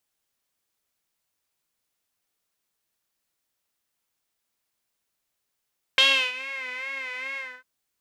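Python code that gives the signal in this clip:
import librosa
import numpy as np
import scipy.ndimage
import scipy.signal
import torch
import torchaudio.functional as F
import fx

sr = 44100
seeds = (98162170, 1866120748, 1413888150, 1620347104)

y = fx.sub_patch_vibrato(sr, seeds[0], note=72, wave='saw', wave2='saw', interval_st=-12, detune_cents=23, level2_db=-9.0, sub_db=-15.0, noise_db=-30.0, kind='bandpass', cutoff_hz=1600.0, q=5.7, env_oct=1.0, env_decay_s=0.59, env_sustain_pct=45, attack_ms=1.5, decay_s=0.34, sustain_db=-19.0, release_s=0.26, note_s=1.39, lfo_hz=2.4, vibrato_cents=72)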